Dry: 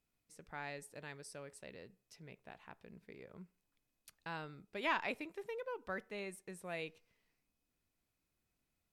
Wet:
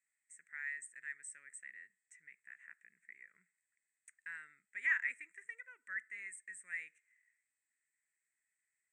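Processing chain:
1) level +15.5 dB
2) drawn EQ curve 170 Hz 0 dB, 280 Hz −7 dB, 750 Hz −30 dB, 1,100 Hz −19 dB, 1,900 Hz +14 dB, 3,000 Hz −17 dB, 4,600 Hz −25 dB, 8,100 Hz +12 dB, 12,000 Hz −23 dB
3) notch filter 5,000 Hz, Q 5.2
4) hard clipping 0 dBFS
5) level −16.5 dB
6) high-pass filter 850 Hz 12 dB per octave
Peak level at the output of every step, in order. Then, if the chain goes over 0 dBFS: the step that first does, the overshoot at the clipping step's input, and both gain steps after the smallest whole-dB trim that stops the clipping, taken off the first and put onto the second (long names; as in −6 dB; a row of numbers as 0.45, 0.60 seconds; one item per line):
−6.0, −5.5, −5.5, −5.5, −22.0, −22.0 dBFS
no step passes full scale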